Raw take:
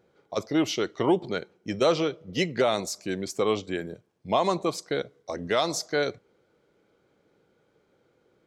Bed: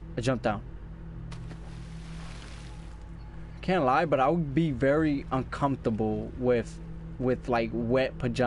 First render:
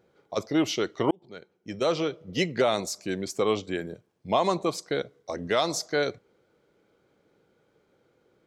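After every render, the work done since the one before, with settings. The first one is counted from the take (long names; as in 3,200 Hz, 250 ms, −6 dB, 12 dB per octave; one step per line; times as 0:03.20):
0:01.11–0:02.22: fade in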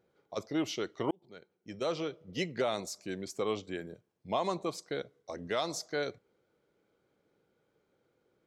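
level −8 dB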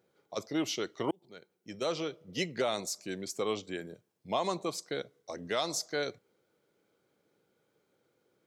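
high-pass filter 96 Hz
high-shelf EQ 3,900 Hz +7 dB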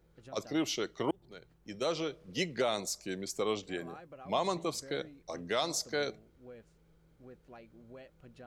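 mix in bed −26 dB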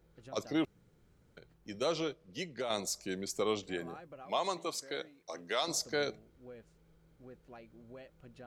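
0:00.65–0:01.37: fill with room tone
0:02.13–0:02.70: clip gain −7 dB
0:04.25–0:05.68: high-pass filter 540 Hz 6 dB per octave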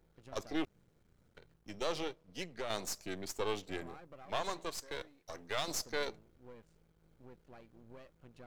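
gain on one half-wave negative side −12 dB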